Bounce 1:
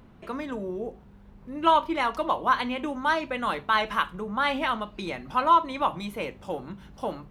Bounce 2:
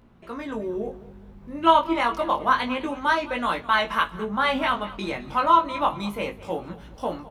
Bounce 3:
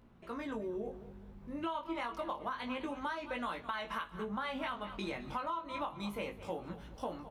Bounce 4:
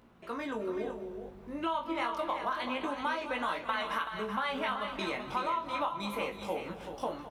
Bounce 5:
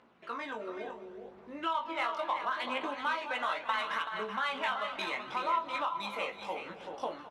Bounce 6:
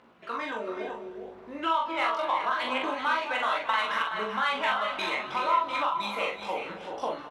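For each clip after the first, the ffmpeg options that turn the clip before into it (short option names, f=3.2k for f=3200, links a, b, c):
-af "dynaudnorm=f=280:g=3:m=6dB,flanger=delay=17:depth=4.4:speed=0.28,aecho=1:1:210|420|630:0.126|0.0466|0.0172"
-af "alimiter=limit=-12.5dB:level=0:latency=1:release=223,acompressor=threshold=-29dB:ratio=5,volume=-6.5dB"
-filter_complex "[0:a]lowshelf=f=180:g=-11,asplit=2[a][b];[b]adelay=43,volume=-14dB[c];[a][c]amix=inputs=2:normalize=0,asplit=2[d][e];[e]aecho=0:1:318|380:0.141|0.398[f];[d][f]amix=inputs=2:normalize=0,volume=5.5dB"
-af "highpass=f=810:p=1,adynamicsmooth=sensitivity=7.5:basefreq=4.9k,aphaser=in_gain=1:out_gain=1:delay=1.6:decay=0.3:speed=0.72:type=triangular,volume=2.5dB"
-filter_complex "[0:a]asplit=2[a][b];[b]adelay=43,volume=-5dB[c];[a][c]amix=inputs=2:normalize=0,volume=4dB"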